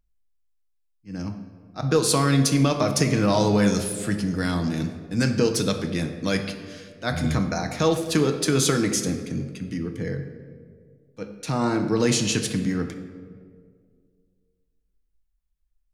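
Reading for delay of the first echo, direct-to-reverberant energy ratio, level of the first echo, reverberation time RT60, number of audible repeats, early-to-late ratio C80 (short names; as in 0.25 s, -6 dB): none, 5.0 dB, none, 2.0 s, none, 10.0 dB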